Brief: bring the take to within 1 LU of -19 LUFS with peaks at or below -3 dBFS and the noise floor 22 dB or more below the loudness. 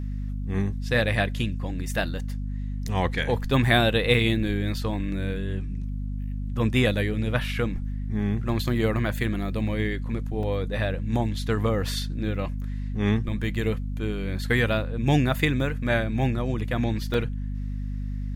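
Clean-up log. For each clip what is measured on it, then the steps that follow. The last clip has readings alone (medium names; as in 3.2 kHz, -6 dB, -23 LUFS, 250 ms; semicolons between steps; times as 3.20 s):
dropouts 2; longest dropout 2.5 ms; hum 50 Hz; highest harmonic 250 Hz; hum level -27 dBFS; loudness -26.5 LUFS; peak level -6.5 dBFS; loudness target -19.0 LUFS
-> interpolate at 10.43/17.14 s, 2.5 ms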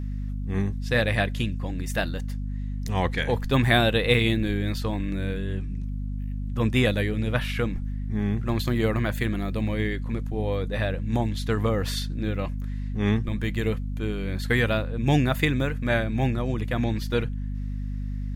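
dropouts 0; hum 50 Hz; highest harmonic 250 Hz; hum level -27 dBFS
-> hum notches 50/100/150/200/250 Hz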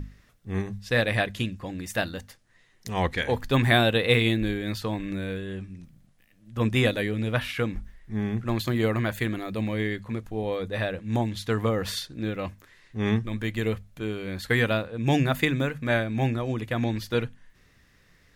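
hum not found; loudness -27.0 LUFS; peak level -7.0 dBFS; loudness target -19.0 LUFS
-> trim +8 dB; peak limiter -3 dBFS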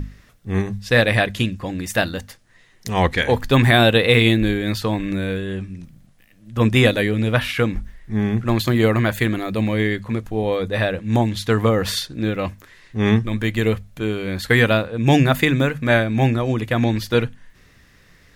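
loudness -19.5 LUFS; peak level -3.0 dBFS; noise floor -52 dBFS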